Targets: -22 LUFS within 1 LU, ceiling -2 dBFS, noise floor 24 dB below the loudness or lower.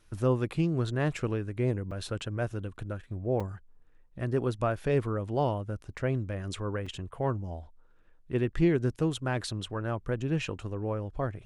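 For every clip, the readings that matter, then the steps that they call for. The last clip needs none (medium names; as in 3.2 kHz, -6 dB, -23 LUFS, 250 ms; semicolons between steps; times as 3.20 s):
dropouts 3; longest dropout 4.8 ms; loudness -31.5 LUFS; peak level -13.5 dBFS; loudness target -22.0 LUFS
-> interpolate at 1.91/3.40/6.86 s, 4.8 ms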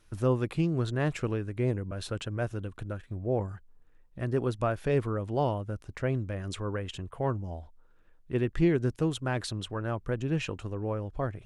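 dropouts 0; loudness -31.5 LUFS; peak level -13.5 dBFS; loudness target -22.0 LUFS
-> trim +9.5 dB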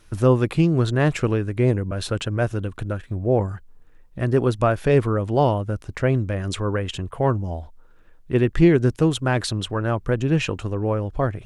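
loudness -22.0 LUFS; peak level -4.0 dBFS; noise floor -49 dBFS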